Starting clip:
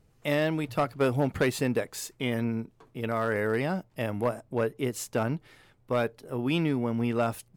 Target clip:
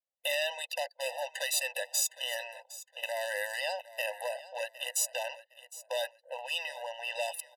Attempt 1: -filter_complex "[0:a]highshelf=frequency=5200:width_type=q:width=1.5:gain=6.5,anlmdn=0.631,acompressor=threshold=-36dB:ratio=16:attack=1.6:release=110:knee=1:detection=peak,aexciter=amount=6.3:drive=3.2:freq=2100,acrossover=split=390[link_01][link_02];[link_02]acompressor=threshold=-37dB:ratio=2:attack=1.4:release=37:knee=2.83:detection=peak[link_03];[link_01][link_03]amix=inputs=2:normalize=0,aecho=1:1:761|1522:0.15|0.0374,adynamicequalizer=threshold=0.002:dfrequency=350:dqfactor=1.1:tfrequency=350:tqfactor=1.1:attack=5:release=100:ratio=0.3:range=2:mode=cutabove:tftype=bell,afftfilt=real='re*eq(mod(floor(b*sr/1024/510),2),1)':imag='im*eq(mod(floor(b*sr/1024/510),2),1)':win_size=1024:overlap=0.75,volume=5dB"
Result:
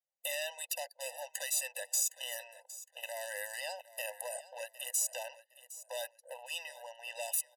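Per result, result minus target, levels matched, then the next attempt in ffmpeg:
downward compressor: peak gain reduction +11.5 dB; 4,000 Hz band −3.5 dB
-filter_complex "[0:a]highshelf=frequency=5200:width_type=q:width=1.5:gain=6.5,anlmdn=0.631,acompressor=threshold=-24dB:ratio=16:attack=1.6:release=110:knee=1:detection=peak,aexciter=amount=6.3:drive=3.2:freq=2100,acrossover=split=390[link_01][link_02];[link_02]acompressor=threshold=-37dB:ratio=2:attack=1.4:release=37:knee=2.83:detection=peak[link_03];[link_01][link_03]amix=inputs=2:normalize=0,aecho=1:1:761|1522:0.15|0.0374,adynamicequalizer=threshold=0.002:dfrequency=350:dqfactor=1.1:tfrequency=350:tqfactor=1.1:attack=5:release=100:ratio=0.3:range=2:mode=cutabove:tftype=bell,afftfilt=real='re*eq(mod(floor(b*sr/1024/510),2),1)':imag='im*eq(mod(floor(b*sr/1024/510),2),1)':win_size=1024:overlap=0.75,volume=5dB"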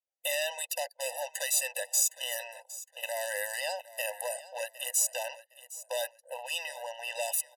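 4,000 Hz band −3.0 dB
-filter_complex "[0:a]anlmdn=0.631,acompressor=threshold=-24dB:ratio=16:attack=1.6:release=110:knee=1:detection=peak,aexciter=amount=6.3:drive=3.2:freq=2100,acrossover=split=390[link_01][link_02];[link_02]acompressor=threshold=-37dB:ratio=2:attack=1.4:release=37:knee=2.83:detection=peak[link_03];[link_01][link_03]amix=inputs=2:normalize=0,aecho=1:1:761|1522:0.15|0.0374,adynamicequalizer=threshold=0.002:dfrequency=350:dqfactor=1.1:tfrequency=350:tqfactor=1.1:attack=5:release=100:ratio=0.3:range=2:mode=cutabove:tftype=bell,afftfilt=real='re*eq(mod(floor(b*sr/1024/510),2),1)':imag='im*eq(mod(floor(b*sr/1024/510),2),1)':win_size=1024:overlap=0.75,volume=5dB"

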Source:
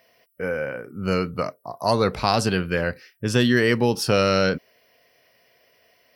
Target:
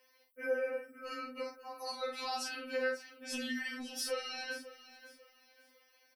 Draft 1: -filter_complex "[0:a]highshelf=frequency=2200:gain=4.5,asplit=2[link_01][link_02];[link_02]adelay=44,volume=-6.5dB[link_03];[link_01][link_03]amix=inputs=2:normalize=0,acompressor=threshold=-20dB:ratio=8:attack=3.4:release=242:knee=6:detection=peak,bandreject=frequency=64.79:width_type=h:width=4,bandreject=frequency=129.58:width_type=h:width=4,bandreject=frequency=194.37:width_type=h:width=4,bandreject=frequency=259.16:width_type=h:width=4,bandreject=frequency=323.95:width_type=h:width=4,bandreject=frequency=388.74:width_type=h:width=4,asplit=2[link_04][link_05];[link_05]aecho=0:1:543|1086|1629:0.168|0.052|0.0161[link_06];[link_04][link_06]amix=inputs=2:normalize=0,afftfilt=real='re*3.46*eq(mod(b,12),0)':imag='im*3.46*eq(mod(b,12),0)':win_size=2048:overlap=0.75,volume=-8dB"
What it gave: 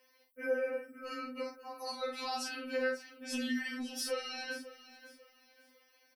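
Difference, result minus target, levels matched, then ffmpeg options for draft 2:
125 Hz band +4.0 dB
-filter_complex "[0:a]highshelf=frequency=2200:gain=4.5,asplit=2[link_01][link_02];[link_02]adelay=44,volume=-6.5dB[link_03];[link_01][link_03]amix=inputs=2:normalize=0,acompressor=threshold=-20dB:ratio=8:attack=3.4:release=242:knee=6:detection=peak,equalizer=frequency=160:width=1.6:gain=-14,bandreject=frequency=64.79:width_type=h:width=4,bandreject=frequency=129.58:width_type=h:width=4,bandreject=frequency=194.37:width_type=h:width=4,bandreject=frequency=259.16:width_type=h:width=4,bandreject=frequency=323.95:width_type=h:width=4,bandreject=frequency=388.74:width_type=h:width=4,asplit=2[link_04][link_05];[link_05]aecho=0:1:543|1086|1629:0.168|0.052|0.0161[link_06];[link_04][link_06]amix=inputs=2:normalize=0,afftfilt=real='re*3.46*eq(mod(b,12),0)':imag='im*3.46*eq(mod(b,12),0)':win_size=2048:overlap=0.75,volume=-8dB"

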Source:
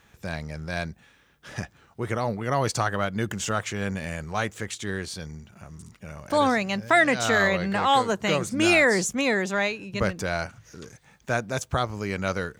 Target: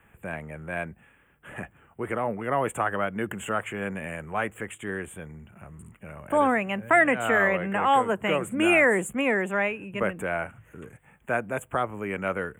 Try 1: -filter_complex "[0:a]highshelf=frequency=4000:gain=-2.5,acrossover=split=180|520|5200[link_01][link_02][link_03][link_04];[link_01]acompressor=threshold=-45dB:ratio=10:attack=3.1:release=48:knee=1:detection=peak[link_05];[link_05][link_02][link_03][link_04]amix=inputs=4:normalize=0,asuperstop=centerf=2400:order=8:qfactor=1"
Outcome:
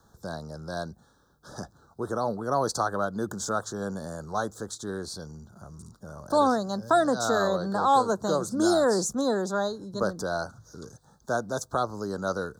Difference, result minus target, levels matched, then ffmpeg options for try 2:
2,000 Hz band −9.0 dB
-filter_complex "[0:a]highshelf=frequency=4000:gain=-2.5,acrossover=split=180|520|5200[link_01][link_02][link_03][link_04];[link_01]acompressor=threshold=-45dB:ratio=10:attack=3.1:release=48:knee=1:detection=peak[link_05];[link_05][link_02][link_03][link_04]amix=inputs=4:normalize=0,asuperstop=centerf=4900:order=8:qfactor=1"

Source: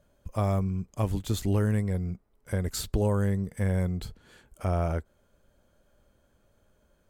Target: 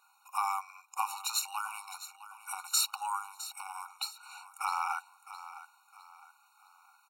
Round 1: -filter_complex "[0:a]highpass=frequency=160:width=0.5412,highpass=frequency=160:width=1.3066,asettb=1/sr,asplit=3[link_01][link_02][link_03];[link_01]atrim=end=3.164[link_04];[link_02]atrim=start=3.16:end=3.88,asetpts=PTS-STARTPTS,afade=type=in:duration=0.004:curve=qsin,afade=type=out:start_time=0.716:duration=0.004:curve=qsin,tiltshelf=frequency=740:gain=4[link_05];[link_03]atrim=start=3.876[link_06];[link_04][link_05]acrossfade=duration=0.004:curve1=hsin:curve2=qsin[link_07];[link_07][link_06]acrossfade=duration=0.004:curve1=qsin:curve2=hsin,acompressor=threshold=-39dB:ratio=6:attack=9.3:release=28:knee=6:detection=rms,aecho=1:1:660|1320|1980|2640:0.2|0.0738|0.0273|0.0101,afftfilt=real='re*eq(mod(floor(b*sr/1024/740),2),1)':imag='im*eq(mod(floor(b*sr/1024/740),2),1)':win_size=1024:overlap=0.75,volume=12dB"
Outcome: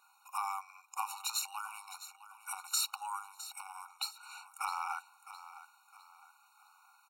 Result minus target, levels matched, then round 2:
downward compressor: peak gain reduction +5.5 dB
-filter_complex "[0:a]highpass=frequency=160:width=0.5412,highpass=frequency=160:width=1.3066,asettb=1/sr,asplit=3[link_01][link_02][link_03];[link_01]atrim=end=3.164[link_04];[link_02]atrim=start=3.16:end=3.88,asetpts=PTS-STARTPTS,afade=type=in:duration=0.004:curve=qsin,afade=type=out:start_time=0.716:duration=0.004:curve=qsin,tiltshelf=frequency=740:gain=4[link_05];[link_03]atrim=start=3.876[link_06];[link_04][link_05]acrossfade=duration=0.004:curve1=hsin:curve2=qsin[link_07];[link_07][link_06]acrossfade=duration=0.004:curve1=qsin:curve2=hsin,acompressor=threshold=-32.5dB:ratio=6:attack=9.3:release=28:knee=6:detection=rms,aecho=1:1:660|1320|1980|2640:0.2|0.0738|0.0273|0.0101,afftfilt=real='re*eq(mod(floor(b*sr/1024/740),2),1)':imag='im*eq(mod(floor(b*sr/1024/740),2),1)':win_size=1024:overlap=0.75,volume=12dB"

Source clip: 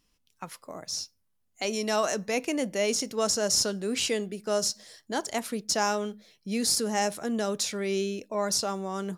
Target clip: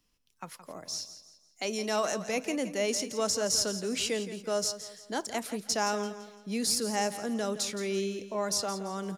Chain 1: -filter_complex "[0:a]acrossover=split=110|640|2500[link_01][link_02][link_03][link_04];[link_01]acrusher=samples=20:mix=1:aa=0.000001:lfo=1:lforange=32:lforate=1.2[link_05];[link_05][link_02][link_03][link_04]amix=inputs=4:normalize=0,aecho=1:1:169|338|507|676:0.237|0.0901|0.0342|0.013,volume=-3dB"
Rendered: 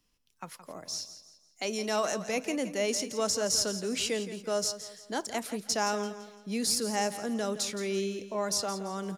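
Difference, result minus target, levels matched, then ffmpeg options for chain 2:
sample-and-hold swept by an LFO: distortion +13 dB
-filter_complex "[0:a]acrossover=split=110|640|2500[link_01][link_02][link_03][link_04];[link_01]acrusher=samples=5:mix=1:aa=0.000001:lfo=1:lforange=8:lforate=1.2[link_05];[link_05][link_02][link_03][link_04]amix=inputs=4:normalize=0,aecho=1:1:169|338|507|676:0.237|0.0901|0.0342|0.013,volume=-3dB"

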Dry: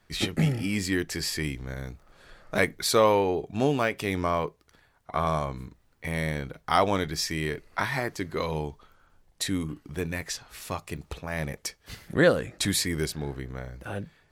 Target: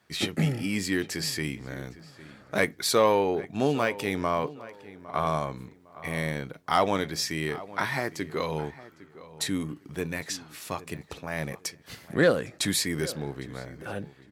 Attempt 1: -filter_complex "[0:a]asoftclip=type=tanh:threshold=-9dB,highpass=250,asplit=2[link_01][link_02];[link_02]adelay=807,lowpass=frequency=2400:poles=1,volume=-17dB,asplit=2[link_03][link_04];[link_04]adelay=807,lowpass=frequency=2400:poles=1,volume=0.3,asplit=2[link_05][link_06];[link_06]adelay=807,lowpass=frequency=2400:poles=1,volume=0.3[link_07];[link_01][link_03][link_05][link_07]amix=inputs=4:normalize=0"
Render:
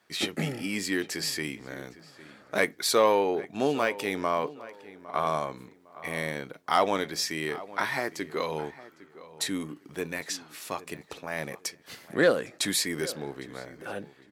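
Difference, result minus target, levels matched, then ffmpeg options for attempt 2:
125 Hz band −7.0 dB
-filter_complex "[0:a]asoftclip=type=tanh:threshold=-9dB,highpass=120,asplit=2[link_01][link_02];[link_02]adelay=807,lowpass=frequency=2400:poles=1,volume=-17dB,asplit=2[link_03][link_04];[link_04]adelay=807,lowpass=frequency=2400:poles=1,volume=0.3,asplit=2[link_05][link_06];[link_06]adelay=807,lowpass=frequency=2400:poles=1,volume=0.3[link_07];[link_01][link_03][link_05][link_07]amix=inputs=4:normalize=0"

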